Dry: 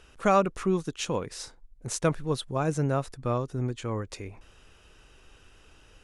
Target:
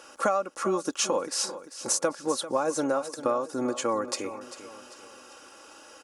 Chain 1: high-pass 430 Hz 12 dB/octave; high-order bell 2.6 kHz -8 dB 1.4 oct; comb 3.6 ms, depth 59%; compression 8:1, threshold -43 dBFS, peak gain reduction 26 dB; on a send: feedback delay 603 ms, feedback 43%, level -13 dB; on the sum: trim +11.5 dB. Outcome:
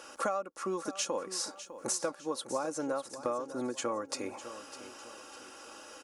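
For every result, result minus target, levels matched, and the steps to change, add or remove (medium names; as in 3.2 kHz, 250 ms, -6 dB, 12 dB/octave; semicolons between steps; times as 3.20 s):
echo 209 ms late; compression: peak gain reduction +7.5 dB
change: feedback delay 394 ms, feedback 43%, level -13 dB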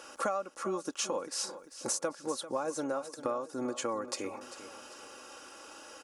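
compression: peak gain reduction +7.5 dB
change: compression 8:1, threshold -34.5 dBFS, peak gain reduction 18.5 dB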